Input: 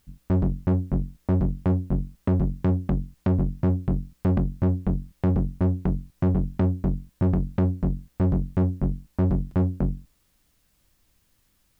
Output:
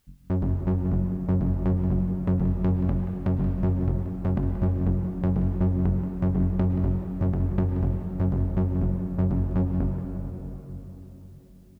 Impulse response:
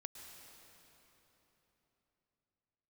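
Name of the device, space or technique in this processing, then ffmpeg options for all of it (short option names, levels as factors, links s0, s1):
cave: -filter_complex "[0:a]aecho=1:1:180:0.237[s0];[1:a]atrim=start_sample=2205[s1];[s0][s1]afir=irnorm=-1:irlink=0,volume=1.26"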